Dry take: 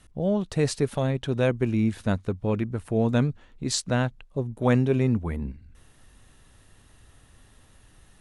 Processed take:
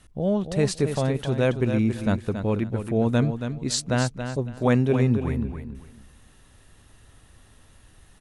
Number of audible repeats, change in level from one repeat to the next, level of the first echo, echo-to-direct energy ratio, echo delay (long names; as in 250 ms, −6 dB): 3, −13.0 dB, −8.5 dB, −8.5 dB, 277 ms